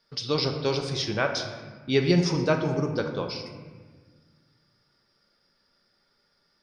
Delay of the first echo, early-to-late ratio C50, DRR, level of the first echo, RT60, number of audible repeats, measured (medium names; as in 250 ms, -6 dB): no echo, 6.5 dB, 4.0 dB, no echo, 1.5 s, no echo